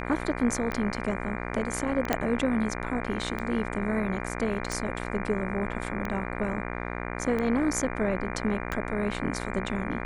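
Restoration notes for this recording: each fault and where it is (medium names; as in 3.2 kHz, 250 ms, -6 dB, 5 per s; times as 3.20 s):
buzz 60 Hz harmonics 40 -34 dBFS
tick 45 rpm -19 dBFS
2.13 s: pop -9 dBFS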